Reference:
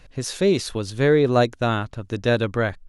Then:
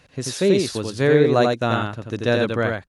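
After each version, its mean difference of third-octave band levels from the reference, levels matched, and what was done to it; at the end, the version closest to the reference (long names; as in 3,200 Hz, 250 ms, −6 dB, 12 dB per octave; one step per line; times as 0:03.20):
4.5 dB: high-pass filter 100 Hz
single-tap delay 87 ms −3.5 dB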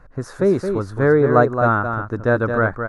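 7.0 dB: high shelf with overshoot 2,000 Hz −13.5 dB, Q 3
single-tap delay 220 ms −7 dB
level +1.5 dB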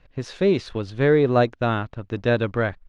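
2.5 dB: mu-law and A-law mismatch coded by A
low-pass filter 3,200 Hz 12 dB per octave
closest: third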